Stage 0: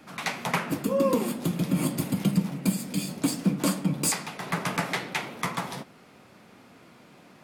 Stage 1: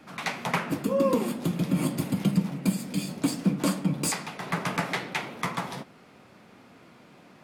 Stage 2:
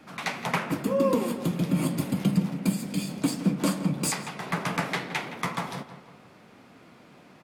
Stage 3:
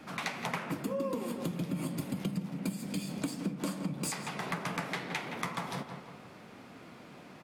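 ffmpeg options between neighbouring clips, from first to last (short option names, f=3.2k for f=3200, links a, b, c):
-af "highshelf=f=6.4k:g=-5.5"
-filter_complex "[0:a]asplit=2[a][b];[b]adelay=168,lowpass=f=3k:p=1,volume=-12dB,asplit=2[c][d];[d]adelay=168,lowpass=f=3k:p=1,volume=0.48,asplit=2[e][f];[f]adelay=168,lowpass=f=3k:p=1,volume=0.48,asplit=2[g][h];[h]adelay=168,lowpass=f=3k:p=1,volume=0.48,asplit=2[i][j];[j]adelay=168,lowpass=f=3k:p=1,volume=0.48[k];[a][c][e][g][i][k]amix=inputs=6:normalize=0"
-af "acompressor=threshold=-35dB:ratio=4,volume=1.5dB"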